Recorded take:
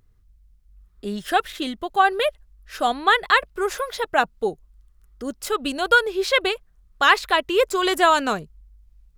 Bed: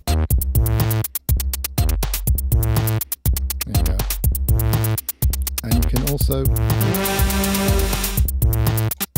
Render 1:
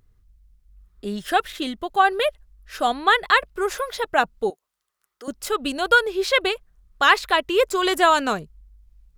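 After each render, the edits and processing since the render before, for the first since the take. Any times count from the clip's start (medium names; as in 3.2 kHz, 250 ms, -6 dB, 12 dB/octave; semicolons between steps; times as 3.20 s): 4.50–5.28 s: high-pass 620 Hz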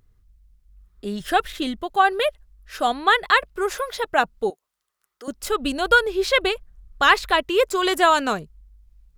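1.20–1.81 s: bass shelf 160 Hz +8.5 dB; 5.42–7.43 s: bass shelf 150 Hz +9.5 dB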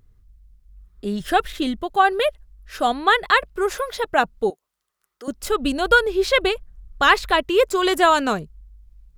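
bass shelf 440 Hz +4.5 dB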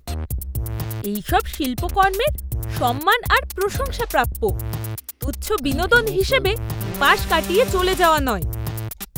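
add bed -8.5 dB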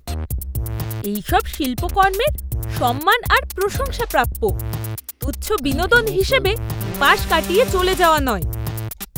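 trim +1.5 dB; peak limiter -1 dBFS, peak gain reduction 1 dB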